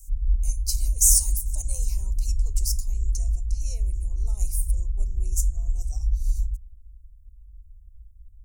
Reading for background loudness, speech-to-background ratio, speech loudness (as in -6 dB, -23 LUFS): -29.5 LUFS, 4.5 dB, -25.0 LUFS